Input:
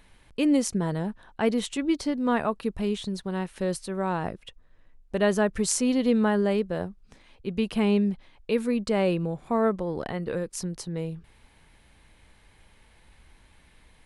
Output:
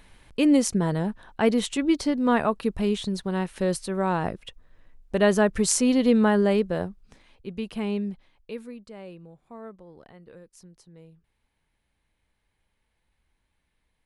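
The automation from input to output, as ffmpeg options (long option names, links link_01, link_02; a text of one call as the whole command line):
ffmpeg -i in.wav -af "volume=3dB,afade=type=out:start_time=6.67:duration=0.88:silence=0.375837,afade=type=out:start_time=8.12:duration=0.71:silence=0.237137" out.wav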